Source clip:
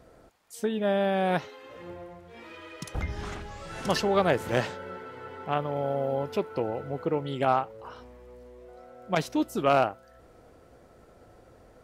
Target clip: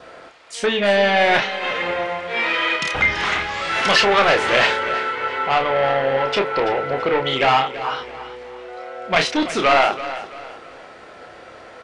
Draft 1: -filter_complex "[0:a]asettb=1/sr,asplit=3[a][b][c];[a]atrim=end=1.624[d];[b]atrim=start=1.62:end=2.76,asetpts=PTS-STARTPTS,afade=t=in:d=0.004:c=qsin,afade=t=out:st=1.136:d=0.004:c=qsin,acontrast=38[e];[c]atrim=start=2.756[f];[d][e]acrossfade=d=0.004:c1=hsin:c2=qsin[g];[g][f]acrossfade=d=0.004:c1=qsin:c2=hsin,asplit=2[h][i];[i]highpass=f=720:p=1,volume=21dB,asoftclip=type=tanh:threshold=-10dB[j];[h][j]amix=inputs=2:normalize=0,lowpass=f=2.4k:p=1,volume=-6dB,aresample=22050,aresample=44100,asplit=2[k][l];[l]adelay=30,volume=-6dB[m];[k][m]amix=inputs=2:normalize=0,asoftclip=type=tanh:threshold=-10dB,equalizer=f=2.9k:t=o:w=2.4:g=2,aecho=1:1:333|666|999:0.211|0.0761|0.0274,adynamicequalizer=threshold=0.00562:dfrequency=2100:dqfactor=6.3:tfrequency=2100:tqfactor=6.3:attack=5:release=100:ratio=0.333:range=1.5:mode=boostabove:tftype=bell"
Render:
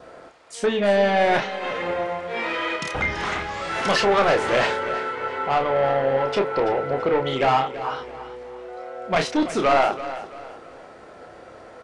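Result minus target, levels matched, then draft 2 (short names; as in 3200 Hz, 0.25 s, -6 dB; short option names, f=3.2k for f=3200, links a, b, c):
4000 Hz band -4.5 dB
-filter_complex "[0:a]asettb=1/sr,asplit=3[a][b][c];[a]atrim=end=1.624[d];[b]atrim=start=1.62:end=2.76,asetpts=PTS-STARTPTS,afade=t=in:d=0.004:c=qsin,afade=t=out:st=1.136:d=0.004:c=qsin,acontrast=38[e];[c]atrim=start=2.756[f];[d][e]acrossfade=d=0.004:c1=hsin:c2=qsin[g];[g][f]acrossfade=d=0.004:c1=qsin:c2=hsin,asplit=2[h][i];[i]highpass=f=720:p=1,volume=21dB,asoftclip=type=tanh:threshold=-10dB[j];[h][j]amix=inputs=2:normalize=0,lowpass=f=2.4k:p=1,volume=-6dB,aresample=22050,aresample=44100,asplit=2[k][l];[l]adelay=30,volume=-6dB[m];[k][m]amix=inputs=2:normalize=0,asoftclip=type=tanh:threshold=-10dB,equalizer=f=2.9k:t=o:w=2.4:g=11,aecho=1:1:333|666|999:0.211|0.0761|0.0274,adynamicequalizer=threshold=0.00562:dfrequency=2100:dqfactor=6.3:tfrequency=2100:tqfactor=6.3:attack=5:release=100:ratio=0.333:range=1.5:mode=boostabove:tftype=bell"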